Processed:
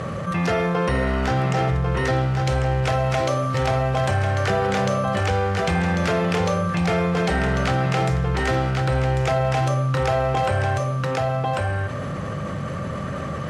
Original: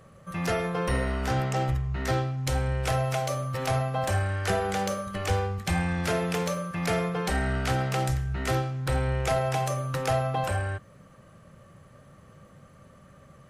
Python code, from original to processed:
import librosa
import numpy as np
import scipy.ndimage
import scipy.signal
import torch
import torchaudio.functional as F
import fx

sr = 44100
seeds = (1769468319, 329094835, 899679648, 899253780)

p1 = scipy.signal.sosfilt(scipy.signal.butter(2, 66.0, 'highpass', fs=sr, output='sos'), x)
p2 = fx.high_shelf(p1, sr, hz=7700.0, db=-4.5)
p3 = fx.quant_float(p2, sr, bits=2)
p4 = p2 + F.gain(torch.from_numpy(p3), -6.0).numpy()
p5 = fx.air_absorb(p4, sr, metres=60.0)
p6 = p5 + fx.echo_single(p5, sr, ms=1095, db=-6.5, dry=0)
y = fx.env_flatten(p6, sr, amount_pct=70)